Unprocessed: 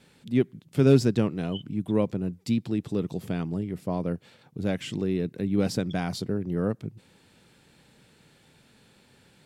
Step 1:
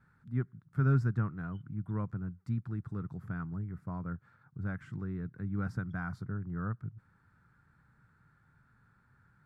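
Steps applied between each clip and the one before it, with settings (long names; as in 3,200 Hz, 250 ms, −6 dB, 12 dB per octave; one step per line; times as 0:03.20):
drawn EQ curve 120 Hz 0 dB, 230 Hz −12 dB, 540 Hz −20 dB, 860 Hz −10 dB, 1,400 Hz +4 dB, 2,900 Hz −29 dB, 5,700 Hz −25 dB
level −1.5 dB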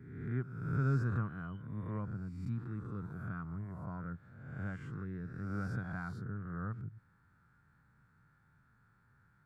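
peak hold with a rise ahead of every peak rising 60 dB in 1.07 s
level −5 dB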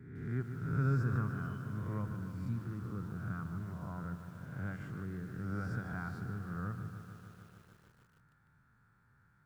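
feedback echo at a low word length 150 ms, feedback 80%, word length 10 bits, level −10 dB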